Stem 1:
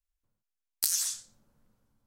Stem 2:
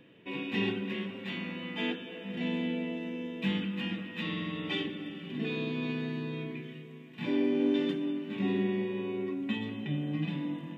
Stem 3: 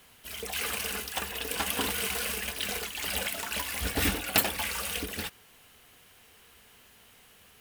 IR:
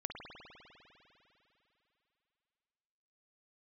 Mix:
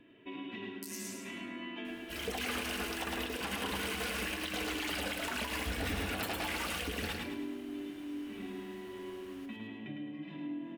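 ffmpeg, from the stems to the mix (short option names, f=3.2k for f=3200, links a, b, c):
-filter_complex "[0:a]volume=-15dB,asplit=2[a][b];[b]volume=-6dB[c];[1:a]bass=f=250:g=1,treble=f=4k:g=-8,aecho=1:1:3:0.7,acompressor=threshold=-36dB:ratio=6,volume=-4.5dB,asplit=2[d][e];[e]volume=-4dB[f];[2:a]lowpass=f=3.1k:p=1,adelay=1850,volume=2dB,asplit=2[g][h];[h]volume=-6.5dB[i];[c][f][i]amix=inputs=3:normalize=0,aecho=0:1:106|212|318|424|530|636:1|0.41|0.168|0.0689|0.0283|0.0116[j];[a][d][g][j]amix=inputs=4:normalize=0,alimiter=level_in=2dB:limit=-24dB:level=0:latency=1:release=132,volume=-2dB"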